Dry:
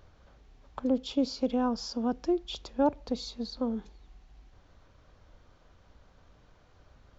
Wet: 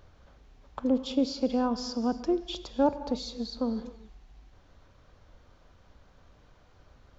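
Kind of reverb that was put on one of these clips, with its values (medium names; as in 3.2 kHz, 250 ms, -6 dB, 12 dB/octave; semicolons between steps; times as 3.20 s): gated-style reverb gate 310 ms flat, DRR 11.5 dB; trim +1 dB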